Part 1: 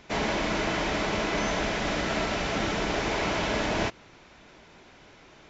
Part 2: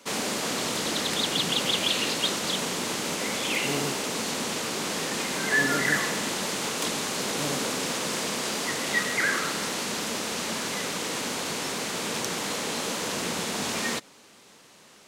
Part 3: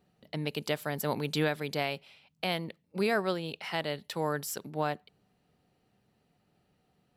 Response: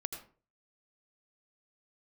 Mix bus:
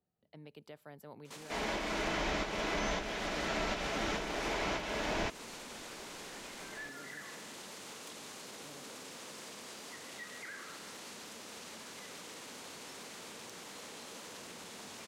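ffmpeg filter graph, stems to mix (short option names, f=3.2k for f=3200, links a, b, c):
-filter_complex "[0:a]adelay=1400,volume=1dB[a];[1:a]acompressor=threshold=-42dB:ratio=2,volume=28.5dB,asoftclip=hard,volume=-28.5dB,adelay=1250,volume=-7dB[b];[2:a]highshelf=f=2.1k:g=-10,volume=-15.5dB,asplit=2[c][d];[d]apad=whole_len=303920[e];[a][e]sidechaincompress=threshold=-49dB:ratio=5:attack=5.3:release=562[f];[b][c]amix=inputs=2:normalize=0,equalizer=f=93:t=o:w=0.92:g=11,alimiter=level_in=14.5dB:limit=-24dB:level=0:latency=1,volume=-14.5dB,volume=0dB[g];[f][g]amix=inputs=2:normalize=0,equalizer=f=100:t=o:w=1.8:g=-9.5,acrossover=split=160[h][i];[i]acompressor=threshold=-32dB:ratio=6[j];[h][j]amix=inputs=2:normalize=0"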